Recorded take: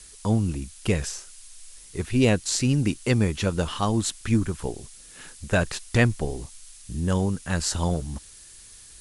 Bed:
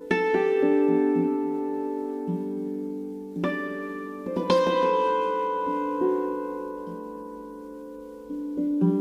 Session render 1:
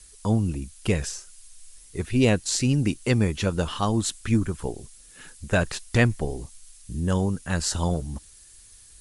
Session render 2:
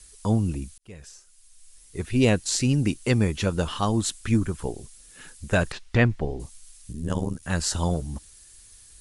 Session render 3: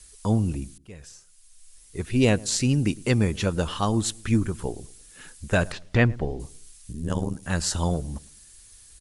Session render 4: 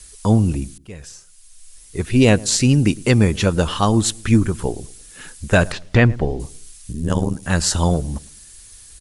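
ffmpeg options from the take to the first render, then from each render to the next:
ffmpeg -i in.wav -af "afftdn=noise_reduction=6:noise_floor=-48" out.wav
ffmpeg -i in.wav -filter_complex "[0:a]asettb=1/sr,asplit=3[link_01][link_02][link_03];[link_01]atrim=end=5.724[link_04];[link_02]atrim=start=5.72:end=6.4,asetpts=PTS-STARTPTS,afade=type=in:duration=0.004:curve=qsin,afade=type=out:start_time=0.676:duration=0.004:curve=qsin,lowpass=3400[link_05];[link_03]atrim=start=6.396[link_06];[link_04][link_05]acrossfade=duration=0.004:curve1=hsin:curve2=qsin[link_07];[link_07][link_06]acrossfade=duration=0.004:curve1=qsin:curve2=hsin,asplit=3[link_08][link_09][link_10];[link_08]afade=type=out:start_time=6.91:duration=0.02[link_11];[link_09]tremolo=f=76:d=0.919,afade=type=in:start_time=6.91:duration=0.02,afade=type=out:start_time=7.42:duration=0.02[link_12];[link_10]afade=type=in:start_time=7.42:duration=0.02[link_13];[link_11][link_12][link_13]amix=inputs=3:normalize=0,asplit=2[link_14][link_15];[link_14]atrim=end=0.78,asetpts=PTS-STARTPTS,afade=type=out:start_time=0.776:duration=0.004:curve=hsin[link_16];[link_15]atrim=start=0.78,asetpts=PTS-STARTPTS,afade=type=in:duration=1.46[link_17];[link_16][link_17]concat=n=2:v=0:a=1" out.wav
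ffmpeg -i in.wav -filter_complex "[0:a]asplit=2[link_01][link_02];[link_02]adelay=108,lowpass=frequency=860:poles=1,volume=-20.5dB,asplit=2[link_03][link_04];[link_04]adelay=108,lowpass=frequency=860:poles=1,volume=0.4,asplit=2[link_05][link_06];[link_06]adelay=108,lowpass=frequency=860:poles=1,volume=0.4[link_07];[link_01][link_03][link_05][link_07]amix=inputs=4:normalize=0" out.wav
ffmpeg -i in.wav -af "volume=7.5dB,alimiter=limit=-2dB:level=0:latency=1" out.wav

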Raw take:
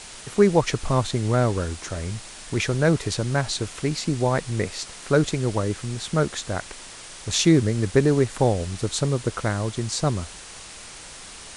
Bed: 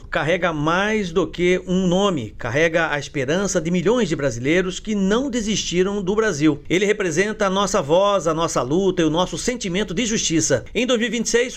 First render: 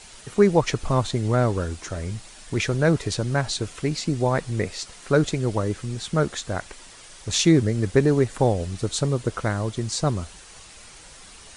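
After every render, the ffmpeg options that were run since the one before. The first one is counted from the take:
ffmpeg -i in.wav -af "afftdn=noise_reduction=7:noise_floor=-41" out.wav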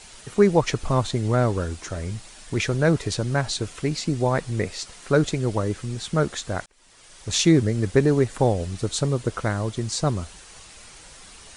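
ffmpeg -i in.wav -filter_complex "[0:a]asplit=2[link_01][link_02];[link_01]atrim=end=6.66,asetpts=PTS-STARTPTS,afade=type=out:start_time=6.656:duration=0.004:curve=hsin[link_03];[link_02]atrim=start=6.66,asetpts=PTS-STARTPTS,afade=type=in:duration=0.67[link_04];[link_03][link_04]concat=n=2:v=0:a=1" out.wav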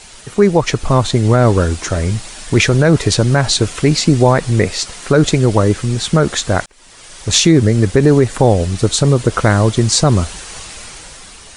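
ffmpeg -i in.wav -af "dynaudnorm=framelen=170:gausssize=11:maxgain=11.5dB,alimiter=level_in=7dB:limit=-1dB:release=50:level=0:latency=1" out.wav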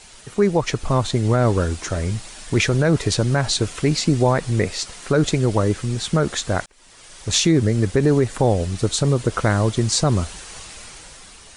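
ffmpeg -i in.wav -af "volume=-6.5dB" out.wav

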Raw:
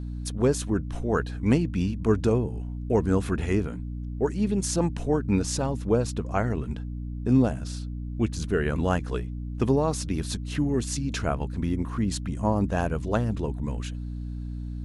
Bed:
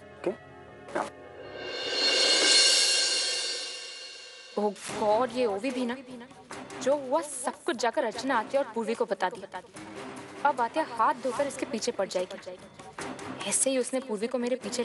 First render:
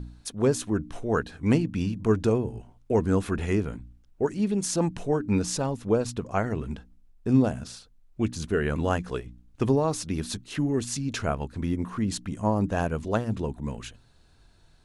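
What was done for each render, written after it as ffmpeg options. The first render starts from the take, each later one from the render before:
ffmpeg -i in.wav -af "bandreject=frequency=60:width_type=h:width=4,bandreject=frequency=120:width_type=h:width=4,bandreject=frequency=180:width_type=h:width=4,bandreject=frequency=240:width_type=h:width=4,bandreject=frequency=300:width_type=h:width=4" out.wav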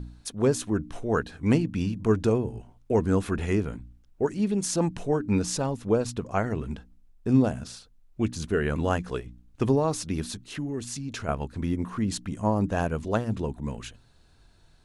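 ffmpeg -i in.wav -filter_complex "[0:a]asettb=1/sr,asplit=3[link_01][link_02][link_03];[link_01]atrim=end=10.304[link_04];[link_02]atrim=start=10.3:end=11.29,asetpts=PTS-STARTPTS,afade=type=in:duration=0.004:curve=qsin,afade=type=out:start_time=0.986:duration=0.004:curve=qsin,acompressor=threshold=-38dB:ratio=1.5:attack=3.2:release=140:knee=1:detection=peak[link_05];[link_03]atrim=start=11.286[link_06];[link_04][link_05]acrossfade=duration=0.004:curve1=hsin:curve2=qsin[link_07];[link_07][link_06]acrossfade=duration=0.004:curve1=qsin:curve2=hsin" out.wav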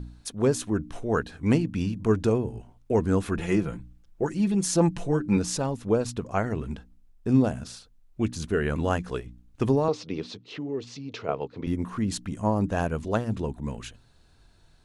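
ffmpeg -i in.wav -filter_complex "[0:a]asettb=1/sr,asplit=3[link_01][link_02][link_03];[link_01]atrim=end=3.374[link_04];[link_02]atrim=start=3.37:end=5.37,asetpts=PTS-STARTPTS,afade=type=in:duration=0.004:curve=qsin,afade=type=out:start_time=1.996:duration=0.004:curve=qsin,aecho=1:1:5.9:0.65,atrim=end_sample=88200[link_05];[link_03]atrim=start=5.366[link_06];[link_04][link_05]acrossfade=duration=0.004:curve1=hsin:curve2=qsin[link_07];[link_07][link_06]acrossfade=duration=0.004:curve1=qsin:curve2=hsin,asettb=1/sr,asplit=3[link_08][link_09][link_10];[link_08]atrim=end=9.884[link_11];[link_09]atrim=start=9.88:end=11.67,asetpts=PTS-STARTPTS,afade=type=in:duration=0.004:curve=qsin,afade=type=out:start_time=1.786:duration=0.004:curve=qsin,highpass=frequency=120:width=0.5412,highpass=frequency=120:width=1.3066,equalizer=frequency=150:width_type=q:width=4:gain=-5,equalizer=frequency=220:width_type=q:width=4:gain=-8,equalizer=frequency=460:width_type=q:width=4:gain=9,equalizer=frequency=1600:width_type=q:width=4:gain=-8,lowpass=frequency=4800:width=0.5412,lowpass=frequency=4800:width=1.3066[link_12];[link_10]atrim=start=11.666[link_13];[link_11][link_12]acrossfade=duration=0.004:curve1=hsin:curve2=qsin[link_14];[link_14][link_13]acrossfade=duration=0.004:curve1=qsin:curve2=hsin" out.wav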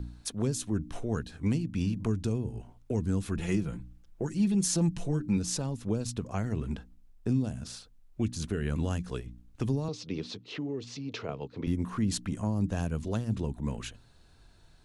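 ffmpeg -i in.wav -filter_complex "[0:a]acrossover=split=250|3000[link_01][link_02][link_03];[link_02]acompressor=threshold=-36dB:ratio=6[link_04];[link_01][link_04][link_03]amix=inputs=3:normalize=0,alimiter=limit=-18.5dB:level=0:latency=1:release=407" out.wav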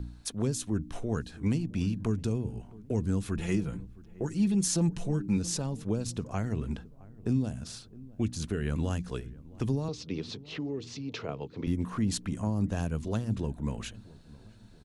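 ffmpeg -i in.wav -filter_complex "[0:a]asplit=2[link_01][link_02];[link_02]adelay=665,lowpass=frequency=880:poles=1,volume=-20dB,asplit=2[link_03][link_04];[link_04]adelay=665,lowpass=frequency=880:poles=1,volume=0.52,asplit=2[link_05][link_06];[link_06]adelay=665,lowpass=frequency=880:poles=1,volume=0.52,asplit=2[link_07][link_08];[link_08]adelay=665,lowpass=frequency=880:poles=1,volume=0.52[link_09];[link_01][link_03][link_05][link_07][link_09]amix=inputs=5:normalize=0" out.wav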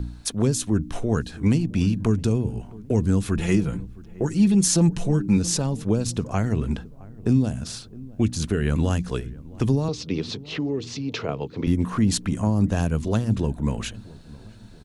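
ffmpeg -i in.wav -af "volume=8.5dB" out.wav

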